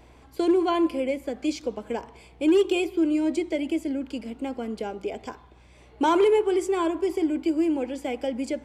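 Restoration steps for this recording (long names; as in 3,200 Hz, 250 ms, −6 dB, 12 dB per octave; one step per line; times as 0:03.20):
clipped peaks rebuilt −14 dBFS
hum removal 60.9 Hz, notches 4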